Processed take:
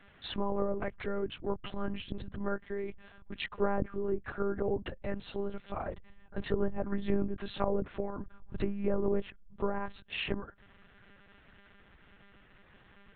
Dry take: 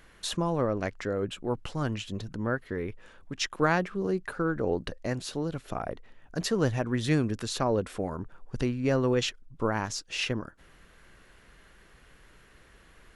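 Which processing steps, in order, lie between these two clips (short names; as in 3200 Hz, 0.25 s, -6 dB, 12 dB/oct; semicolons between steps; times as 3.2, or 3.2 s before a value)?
treble ducked by the level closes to 910 Hz, closed at -22.5 dBFS; monotone LPC vocoder at 8 kHz 200 Hz; gain -3 dB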